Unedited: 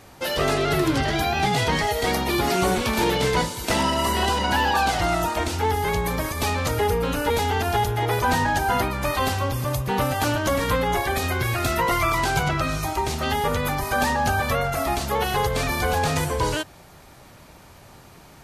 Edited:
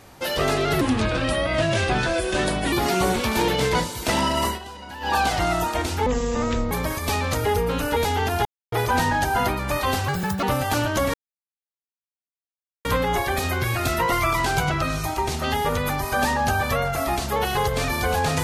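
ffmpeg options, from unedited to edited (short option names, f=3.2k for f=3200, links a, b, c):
-filter_complex "[0:a]asplit=12[a][b][c][d][e][f][g][h][i][j][k][l];[a]atrim=end=0.814[m];[b]atrim=start=0.81:end=2.34,asetpts=PTS-STARTPTS,asetrate=35280,aresample=44100,atrim=end_sample=84341,asetpts=PTS-STARTPTS[n];[c]atrim=start=2.336:end=4.21,asetpts=PTS-STARTPTS,afade=t=out:st=1.744:d=0.13:silence=0.158489[o];[d]atrim=start=4.21:end=4.62,asetpts=PTS-STARTPTS,volume=-16dB[p];[e]atrim=start=4.62:end=5.684,asetpts=PTS-STARTPTS,afade=t=in:d=0.13:silence=0.158489[q];[f]atrim=start=5.68:end=6.05,asetpts=PTS-STARTPTS,asetrate=25137,aresample=44100,atrim=end_sample=28626,asetpts=PTS-STARTPTS[r];[g]atrim=start=6.046:end=7.79,asetpts=PTS-STARTPTS,afade=t=out:st=1.74:d=0.004:c=hsin[s];[h]atrim=start=7.79:end=8.06,asetpts=PTS-STARTPTS,volume=0[t];[i]atrim=start=8.06:end=9.424,asetpts=PTS-STARTPTS,afade=t=in:d=0.004:c=hsin[u];[j]atrim=start=9.42:end=9.93,asetpts=PTS-STARTPTS,asetrate=64827,aresample=44100[v];[k]atrim=start=9.926:end=10.64,asetpts=PTS-STARTPTS,afade=t=out:st=0.71:d=0.004:c=hsin,apad=pad_dur=1.71[w];[l]atrim=start=10.64,asetpts=PTS-STARTPTS,afade=t=in:d=0.004:c=hsin[x];[m][n]acrossfade=d=0.004:c1=hsin:c2=hsin[y];[o][p][q]concat=n=3:v=0:a=1[z];[y][z]acrossfade=d=0.004:c1=hsin:c2=hsin[aa];[aa][r]acrossfade=d=0.004:c1=hsin:c2=hsin[ab];[s][t][u]concat=n=3:v=0:a=1[ac];[ab][ac]acrossfade=d=0.004:c1=hsin:c2=hsin[ad];[ad][v]acrossfade=d=0.004:c1=hsin:c2=hsin[ae];[w][x]concat=n=2:v=0:a=1[af];[ae][af]acrossfade=d=0.004:c1=hsin:c2=hsin"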